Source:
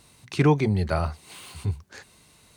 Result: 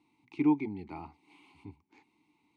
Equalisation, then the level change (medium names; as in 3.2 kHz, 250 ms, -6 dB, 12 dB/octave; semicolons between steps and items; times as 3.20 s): vowel filter u; 0.0 dB